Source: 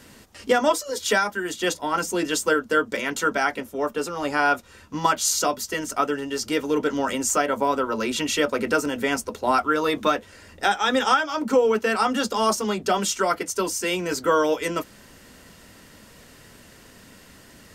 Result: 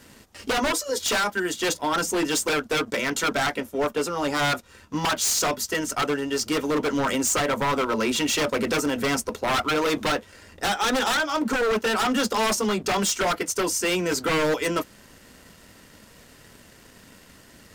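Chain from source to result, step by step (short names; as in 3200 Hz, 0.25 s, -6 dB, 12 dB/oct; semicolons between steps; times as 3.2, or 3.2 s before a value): sample leveller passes 1; wavefolder -16 dBFS; gain -1.5 dB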